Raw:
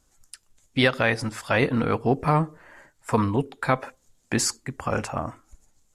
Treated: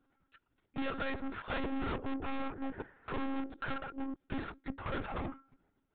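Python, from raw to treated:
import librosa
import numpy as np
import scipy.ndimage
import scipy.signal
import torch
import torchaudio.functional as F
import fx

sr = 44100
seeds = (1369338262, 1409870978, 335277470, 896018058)

y = fx.reverse_delay(x, sr, ms=440, wet_db=-8.0, at=(1.94, 4.53))
y = scipy.signal.sosfilt(scipy.signal.butter(2, 2500.0, 'lowpass', fs=sr, output='sos'), y)
y = fx.small_body(y, sr, hz=(280.0, 1400.0), ring_ms=30, db=9)
y = fx.tube_stage(y, sr, drive_db=31.0, bias=0.7)
y = fx.highpass(y, sr, hz=100.0, slope=6)
y = fx.lpc_monotone(y, sr, seeds[0], pitch_hz=270.0, order=16)
y = F.gain(torch.from_numpy(y), -2.0).numpy()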